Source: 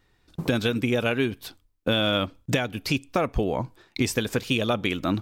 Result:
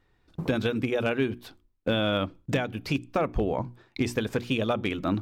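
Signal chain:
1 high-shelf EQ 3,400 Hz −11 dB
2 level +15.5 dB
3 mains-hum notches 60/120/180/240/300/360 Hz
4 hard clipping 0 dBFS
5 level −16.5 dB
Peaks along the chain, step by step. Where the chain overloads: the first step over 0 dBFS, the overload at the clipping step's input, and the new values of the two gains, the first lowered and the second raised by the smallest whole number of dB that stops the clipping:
−10.5, +5.0, +4.0, 0.0, −16.5 dBFS
step 2, 4.0 dB
step 2 +11.5 dB, step 5 −12.5 dB

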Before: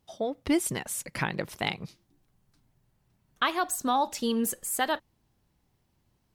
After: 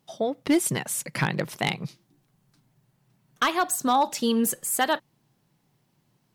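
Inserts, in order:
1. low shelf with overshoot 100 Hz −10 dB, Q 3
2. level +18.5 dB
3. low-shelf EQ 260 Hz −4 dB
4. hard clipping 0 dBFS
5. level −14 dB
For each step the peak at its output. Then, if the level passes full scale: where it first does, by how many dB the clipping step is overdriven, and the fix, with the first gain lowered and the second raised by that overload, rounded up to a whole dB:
−11.5, +7.0, +7.5, 0.0, −14.0 dBFS
step 2, 7.5 dB
step 2 +10.5 dB, step 5 −6 dB

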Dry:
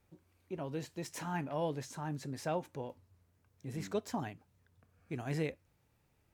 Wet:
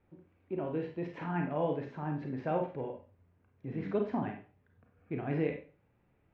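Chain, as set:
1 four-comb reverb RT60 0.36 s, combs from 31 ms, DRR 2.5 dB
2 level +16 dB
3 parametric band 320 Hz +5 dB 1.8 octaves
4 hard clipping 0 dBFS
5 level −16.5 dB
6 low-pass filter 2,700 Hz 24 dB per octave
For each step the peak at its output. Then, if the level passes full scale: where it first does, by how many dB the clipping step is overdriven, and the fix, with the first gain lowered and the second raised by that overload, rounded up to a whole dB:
−21.5, −5.5, −2.0, −2.0, −18.5, −18.5 dBFS
no step passes full scale

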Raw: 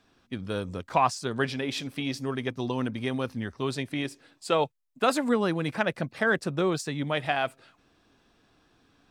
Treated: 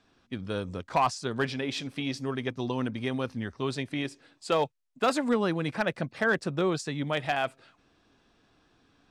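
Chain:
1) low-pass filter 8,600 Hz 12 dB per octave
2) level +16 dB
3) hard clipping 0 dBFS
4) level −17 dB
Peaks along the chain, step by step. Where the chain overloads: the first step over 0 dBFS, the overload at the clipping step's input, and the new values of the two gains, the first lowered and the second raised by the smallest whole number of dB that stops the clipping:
−9.5, +6.5, 0.0, −17.0 dBFS
step 2, 6.5 dB
step 2 +9 dB, step 4 −10 dB

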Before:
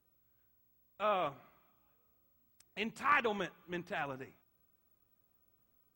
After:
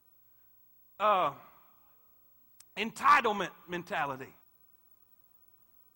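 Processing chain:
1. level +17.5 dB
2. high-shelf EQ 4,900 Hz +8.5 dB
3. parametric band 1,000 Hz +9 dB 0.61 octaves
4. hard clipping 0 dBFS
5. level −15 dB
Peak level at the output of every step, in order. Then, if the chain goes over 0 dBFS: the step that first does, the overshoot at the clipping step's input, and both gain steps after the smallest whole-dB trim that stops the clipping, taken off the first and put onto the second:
+1.0, +2.0, +5.0, 0.0, −15.0 dBFS
step 1, 5.0 dB
step 1 +12.5 dB, step 5 −10 dB

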